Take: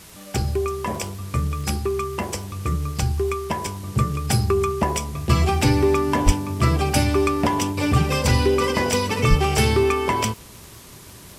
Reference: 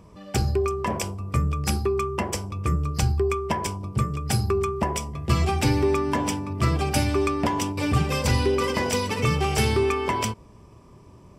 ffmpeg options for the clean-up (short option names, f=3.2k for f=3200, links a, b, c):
-filter_complex "[0:a]adeclick=t=4,asplit=3[a][b][c];[a]afade=t=out:st=6.25:d=0.02[d];[b]highpass=f=140:w=0.5412,highpass=f=140:w=1.3066,afade=t=in:st=6.25:d=0.02,afade=t=out:st=6.37:d=0.02[e];[c]afade=t=in:st=6.37:d=0.02[f];[d][e][f]amix=inputs=3:normalize=0,asplit=3[g][h][i];[g]afade=t=out:st=9.29:d=0.02[j];[h]highpass=f=140:w=0.5412,highpass=f=140:w=1.3066,afade=t=in:st=9.29:d=0.02,afade=t=out:st=9.41:d=0.02[k];[i]afade=t=in:st=9.41:d=0.02[l];[j][k][l]amix=inputs=3:normalize=0,afwtdn=0.0063,asetnsamples=n=441:p=0,asendcmd='3.88 volume volume -3.5dB',volume=0dB"